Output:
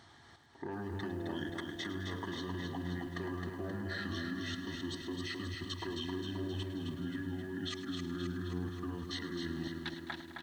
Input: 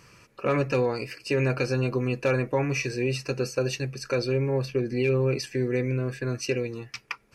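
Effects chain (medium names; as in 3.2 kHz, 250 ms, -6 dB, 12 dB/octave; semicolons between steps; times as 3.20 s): high-pass 130 Hz 12 dB/octave; level held to a coarse grid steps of 19 dB; wide varispeed 0.704×; feedback delay 264 ms, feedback 59%, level -5 dB; bit-crushed delay 105 ms, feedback 80%, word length 9-bit, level -13 dB; trim -2.5 dB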